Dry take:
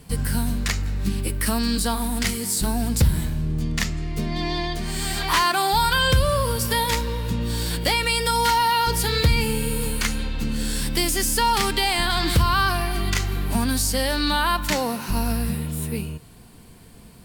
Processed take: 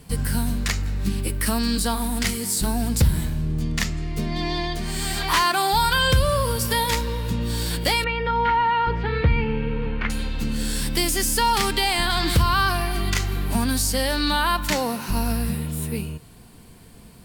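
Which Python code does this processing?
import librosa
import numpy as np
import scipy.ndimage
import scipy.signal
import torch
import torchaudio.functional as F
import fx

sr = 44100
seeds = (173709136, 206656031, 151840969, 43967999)

y = fx.lowpass(x, sr, hz=2500.0, slope=24, at=(8.04, 10.1))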